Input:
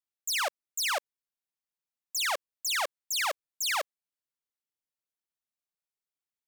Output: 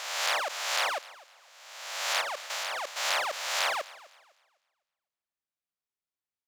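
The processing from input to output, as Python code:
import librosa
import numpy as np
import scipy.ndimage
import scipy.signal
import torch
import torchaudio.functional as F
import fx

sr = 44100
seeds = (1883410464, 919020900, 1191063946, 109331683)

y = fx.spec_swells(x, sr, rise_s=1.31)
y = fx.high_shelf(y, sr, hz=7000.0, db=-9.0)
y = fx.level_steps(y, sr, step_db=10, at=(2.21, 2.99))
y = fx.echo_thinned(y, sr, ms=253, feedback_pct=30, hz=150.0, wet_db=-20)
y = F.gain(torch.from_numpy(y), -4.0).numpy()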